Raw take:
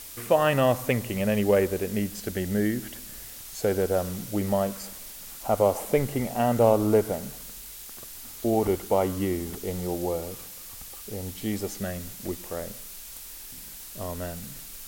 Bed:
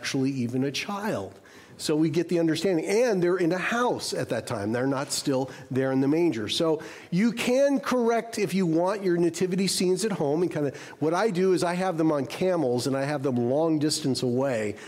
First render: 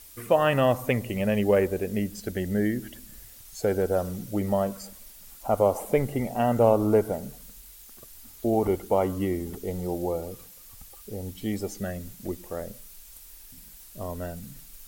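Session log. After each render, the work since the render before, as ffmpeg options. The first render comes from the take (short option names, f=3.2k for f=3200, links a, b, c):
-af "afftdn=nr=9:nf=-42"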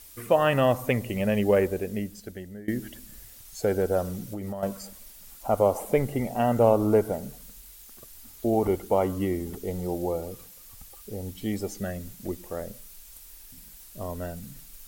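-filter_complex "[0:a]asettb=1/sr,asplit=3[a][b][c];[a]atrim=end=4.204[d];[b]atrim=start=4.2:end=4.63,asetpts=PTS-STARTPTS,afade=t=in:d=0.004:c=qsin,afade=t=out:st=0.426:d=0.004:c=qsin,acompressor=threshold=-30dB:ratio=10:attack=3.2:release=140:knee=1:detection=peak[e];[c]atrim=start=4.626[f];[d][e]acrossfade=d=0.004:c1=hsin:c2=qsin[g];[g][f]acrossfade=d=0.004:c1=qsin:c2=hsin,asplit=2[h][i];[h]atrim=end=2.68,asetpts=PTS-STARTPTS,afade=t=out:st=1.65:d=1.03:silence=0.0707946[j];[i]atrim=start=2.68,asetpts=PTS-STARTPTS,afade=t=in:d=0.004:c=hsin:silence=0.0707946[k];[j][k]concat=n=2:v=0:a=1"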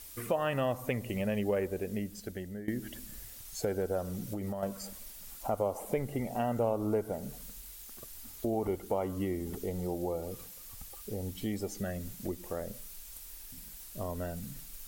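-af "acompressor=threshold=-35dB:ratio=2"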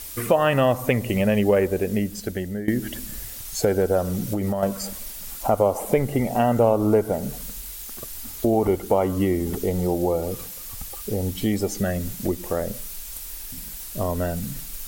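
-af "volume=12dB"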